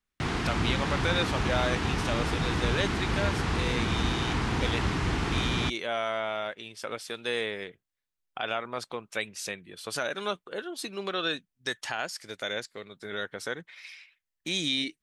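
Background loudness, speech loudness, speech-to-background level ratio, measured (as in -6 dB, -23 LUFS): -29.5 LUFS, -33.0 LUFS, -3.5 dB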